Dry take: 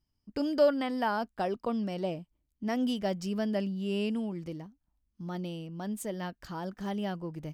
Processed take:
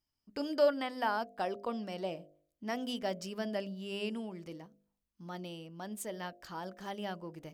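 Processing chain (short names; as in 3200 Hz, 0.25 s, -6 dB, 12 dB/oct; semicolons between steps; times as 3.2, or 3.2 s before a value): low shelf 260 Hz -11.5 dB; de-hum 50.22 Hz, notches 14; gain -1 dB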